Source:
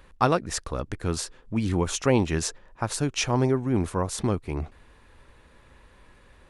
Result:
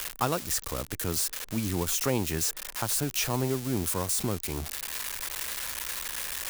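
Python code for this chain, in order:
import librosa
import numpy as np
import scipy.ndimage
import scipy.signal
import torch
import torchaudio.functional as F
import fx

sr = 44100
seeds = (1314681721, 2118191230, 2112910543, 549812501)

y = x + 0.5 * 10.0 ** (-17.0 / 20.0) * np.diff(np.sign(x), prepend=np.sign(x[:1]))
y = fx.band_squash(y, sr, depth_pct=40)
y = y * librosa.db_to_amplitude(-5.5)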